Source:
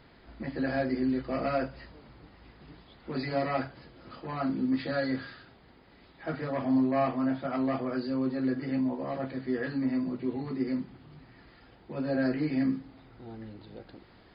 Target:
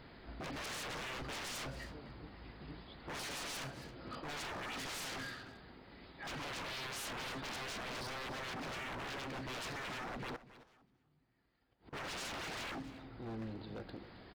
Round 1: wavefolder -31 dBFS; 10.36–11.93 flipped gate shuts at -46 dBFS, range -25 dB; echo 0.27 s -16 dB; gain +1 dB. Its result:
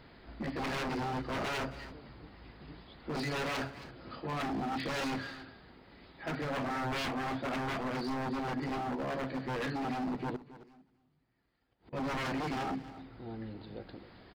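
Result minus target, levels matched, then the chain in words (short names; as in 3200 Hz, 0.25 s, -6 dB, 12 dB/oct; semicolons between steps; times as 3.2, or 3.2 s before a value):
wavefolder: distortion -17 dB
wavefolder -39.5 dBFS; 10.36–11.93 flipped gate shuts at -46 dBFS, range -25 dB; echo 0.27 s -16 dB; gain +1 dB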